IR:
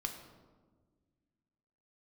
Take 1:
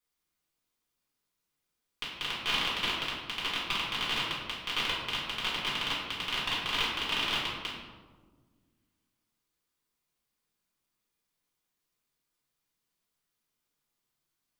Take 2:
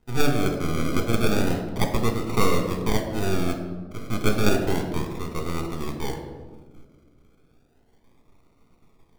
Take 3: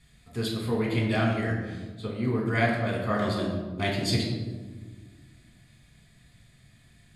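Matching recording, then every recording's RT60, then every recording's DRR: 2; 1.5, 1.5, 1.5 seconds; −8.5, 3.5, −3.5 decibels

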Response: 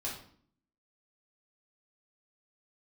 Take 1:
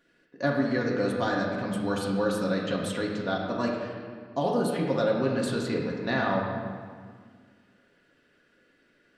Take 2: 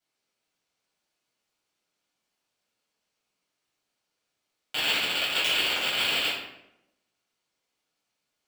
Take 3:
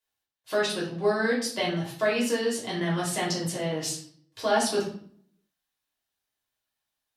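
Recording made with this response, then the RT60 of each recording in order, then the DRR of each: 3; 1.8, 0.80, 0.55 seconds; −3.0, −10.0, −6.0 decibels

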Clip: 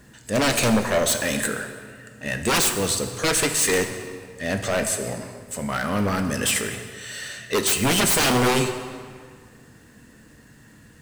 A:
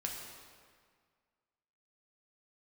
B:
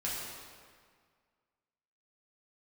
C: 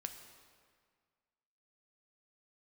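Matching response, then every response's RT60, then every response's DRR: C; 1.9, 1.9, 1.8 seconds; −1.0, −7.0, 6.0 decibels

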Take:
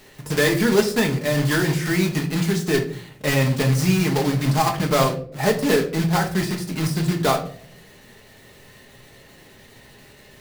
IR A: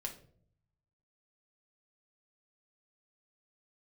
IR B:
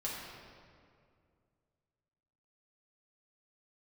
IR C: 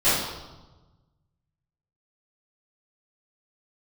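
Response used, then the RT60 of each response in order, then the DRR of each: A; 0.60, 2.2, 1.2 seconds; 1.5, −6.5, −16.5 decibels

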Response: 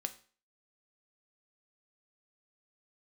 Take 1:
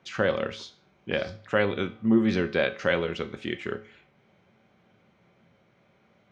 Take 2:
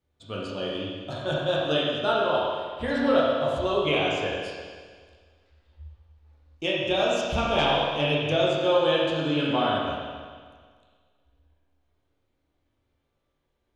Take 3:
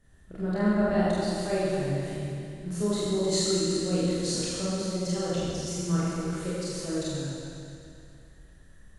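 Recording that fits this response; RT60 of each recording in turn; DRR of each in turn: 1; 0.40, 1.7, 2.5 seconds; 8.0, −6.5, −9.5 decibels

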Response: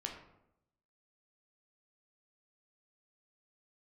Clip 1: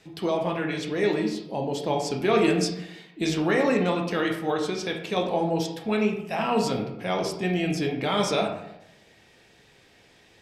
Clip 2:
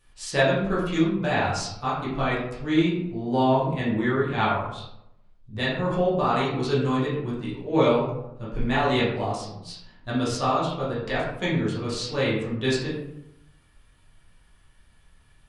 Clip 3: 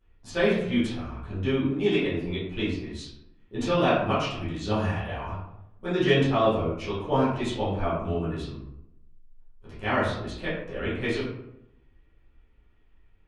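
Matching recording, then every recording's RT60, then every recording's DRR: 1; 0.80, 0.80, 0.80 seconds; 1.0, −8.5, −13.5 decibels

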